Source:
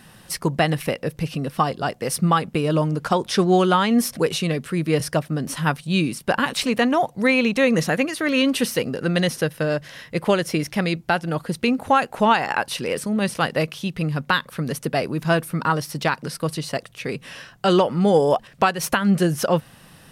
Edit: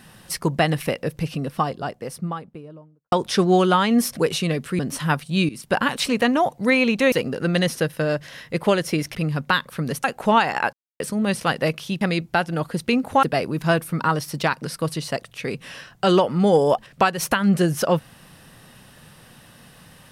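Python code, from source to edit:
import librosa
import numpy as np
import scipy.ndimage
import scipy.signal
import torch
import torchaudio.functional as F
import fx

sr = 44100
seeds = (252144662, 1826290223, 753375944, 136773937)

y = fx.studio_fade_out(x, sr, start_s=1.07, length_s=2.05)
y = fx.edit(y, sr, fx.cut(start_s=4.79, length_s=0.57),
    fx.fade_in_from(start_s=6.06, length_s=0.26, curve='qsin', floor_db=-17.0),
    fx.cut(start_s=7.69, length_s=1.04),
    fx.swap(start_s=10.76, length_s=1.22, other_s=13.95, other_length_s=0.89),
    fx.silence(start_s=12.67, length_s=0.27), tone=tone)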